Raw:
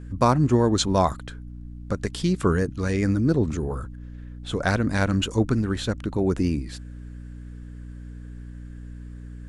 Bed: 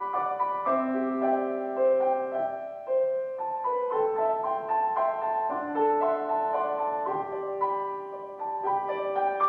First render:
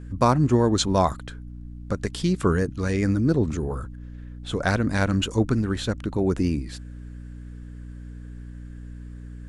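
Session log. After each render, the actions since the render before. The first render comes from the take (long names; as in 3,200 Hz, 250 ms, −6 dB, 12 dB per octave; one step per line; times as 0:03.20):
no processing that can be heard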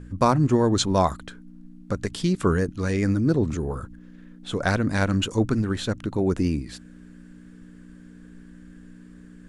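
hum removal 60 Hz, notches 2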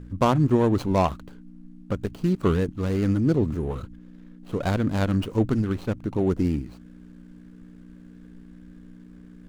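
running median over 25 samples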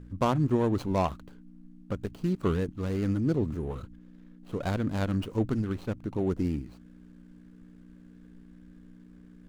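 level −5.5 dB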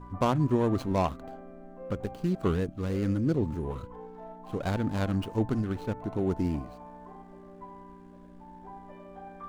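mix in bed −19.5 dB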